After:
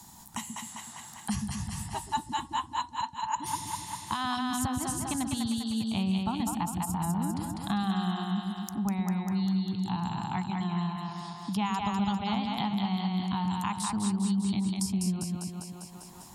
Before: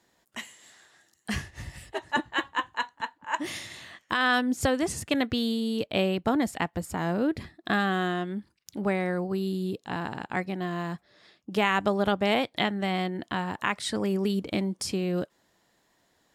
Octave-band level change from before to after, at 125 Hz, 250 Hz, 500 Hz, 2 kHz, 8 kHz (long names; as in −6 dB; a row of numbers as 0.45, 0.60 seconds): +2.5, 0.0, −16.0, −12.0, +4.5 decibels